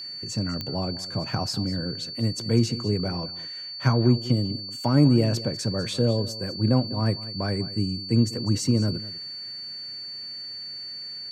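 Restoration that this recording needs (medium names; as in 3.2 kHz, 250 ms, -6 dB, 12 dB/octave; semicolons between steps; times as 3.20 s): de-click; band-stop 4.5 kHz, Q 30; inverse comb 198 ms -16.5 dB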